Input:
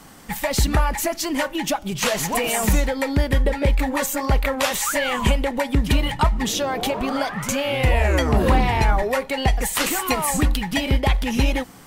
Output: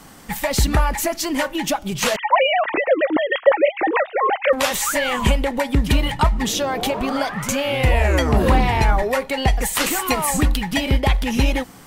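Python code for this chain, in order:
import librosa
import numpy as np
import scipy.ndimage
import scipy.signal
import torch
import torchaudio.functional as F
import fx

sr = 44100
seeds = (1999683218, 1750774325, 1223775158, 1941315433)

y = fx.sine_speech(x, sr, at=(2.16, 4.53))
y = y * 10.0 ** (1.5 / 20.0)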